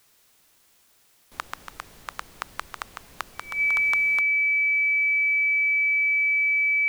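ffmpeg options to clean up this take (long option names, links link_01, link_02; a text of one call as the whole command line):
ffmpeg -i in.wav -af "bandreject=frequency=2300:width=30,agate=range=-21dB:threshold=-53dB" out.wav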